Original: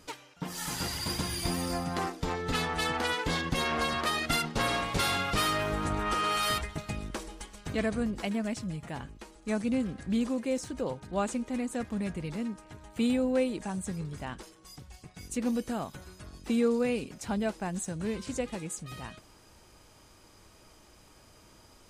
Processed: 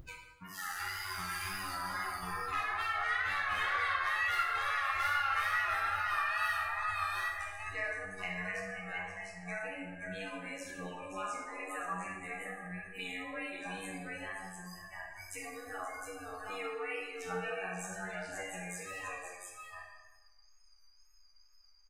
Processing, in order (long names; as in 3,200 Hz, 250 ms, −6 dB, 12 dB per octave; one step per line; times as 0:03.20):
phases set to zero 92.8 Hz
octave-band graphic EQ 125/250/500/1,000/2,000/4,000/8,000 Hz −10/−6/−4/+4/+10/−6/−6 dB
soft clipping −18.5 dBFS, distortion −15 dB
multi-tap delay 61/527/706 ms −12.5/−8.5/−4.5 dB
downward compressor 2 to 1, threshold −39 dBFS, peak gain reduction 9 dB
parametric band 250 Hz −8.5 dB 2.4 octaves
tape wow and flutter 72 cents
noise reduction from a noise print of the clip's start 29 dB
dense smooth reverb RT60 1.2 s, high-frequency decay 0.65×, DRR −2.5 dB